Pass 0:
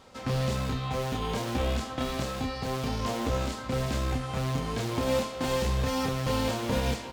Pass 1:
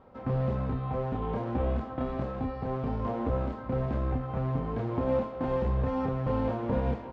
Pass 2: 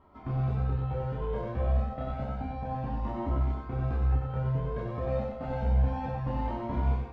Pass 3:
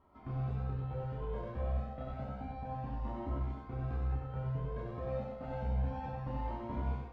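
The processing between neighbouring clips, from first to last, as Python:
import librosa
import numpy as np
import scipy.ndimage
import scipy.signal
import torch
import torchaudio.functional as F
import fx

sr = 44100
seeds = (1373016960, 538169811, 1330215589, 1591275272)

y1 = scipy.signal.sosfilt(scipy.signal.butter(2, 1100.0, 'lowpass', fs=sr, output='sos'), x)
y2 = fx.doubler(y1, sr, ms=14.0, db=-5)
y2 = y2 + 10.0 ** (-4.5 / 20.0) * np.pad(y2, (int(93 * sr / 1000.0), 0))[:len(y2)]
y2 = fx.comb_cascade(y2, sr, direction='rising', hz=0.3)
y3 = y2 + 10.0 ** (-8.5 / 20.0) * np.pad(y2, (int(71 * sr / 1000.0), 0))[:len(y2)]
y3 = F.gain(torch.from_numpy(y3), -7.5).numpy()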